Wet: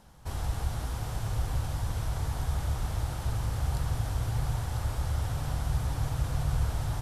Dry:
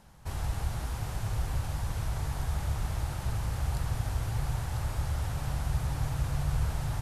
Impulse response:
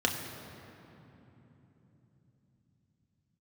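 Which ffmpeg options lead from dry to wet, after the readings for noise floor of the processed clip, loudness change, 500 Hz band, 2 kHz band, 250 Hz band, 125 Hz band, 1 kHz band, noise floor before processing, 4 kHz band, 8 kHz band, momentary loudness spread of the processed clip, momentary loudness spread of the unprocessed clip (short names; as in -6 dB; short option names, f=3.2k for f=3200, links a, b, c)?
-37 dBFS, +1.0 dB, +1.5 dB, -0.5 dB, +0.5 dB, +1.0 dB, +1.0 dB, -38 dBFS, +1.0 dB, +0.5 dB, 3 LU, 3 LU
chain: -filter_complex "[0:a]asplit=2[a][b];[1:a]atrim=start_sample=2205[c];[b][c]afir=irnorm=-1:irlink=0,volume=-21.5dB[d];[a][d]amix=inputs=2:normalize=0"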